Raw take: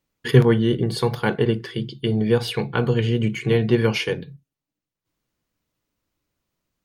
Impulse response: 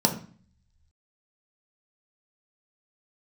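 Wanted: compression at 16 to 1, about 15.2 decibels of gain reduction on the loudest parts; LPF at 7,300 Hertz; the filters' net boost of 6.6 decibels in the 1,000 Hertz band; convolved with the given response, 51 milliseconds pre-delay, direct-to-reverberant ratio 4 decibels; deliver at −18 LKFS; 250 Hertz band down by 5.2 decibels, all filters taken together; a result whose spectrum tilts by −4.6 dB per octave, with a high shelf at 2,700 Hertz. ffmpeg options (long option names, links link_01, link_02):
-filter_complex "[0:a]lowpass=7300,equalizer=frequency=250:width_type=o:gain=-8,equalizer=frequency=1000:width_type=o:gain=7.5,highshelf=frequency=2700:gain=8.5,acompressor=threshold=-25dB:ratio=16,asplit=2[link_01][link_02];[1:a]atrim=start_sample=2205,adelay=51[link_03];[link_02][link_03]afir=irnorm=-1:irlink=0,volume=-17dB[link_04];[link_01][link_04]amix=inputs=2:normalize=0,volume=9dB"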